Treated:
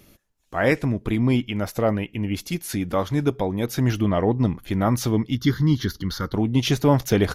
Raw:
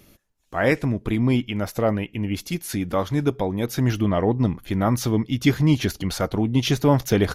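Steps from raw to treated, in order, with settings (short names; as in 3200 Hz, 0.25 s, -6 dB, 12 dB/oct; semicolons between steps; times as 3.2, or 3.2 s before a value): 5.35–6.34 fixed phaser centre 2500 Hz, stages 6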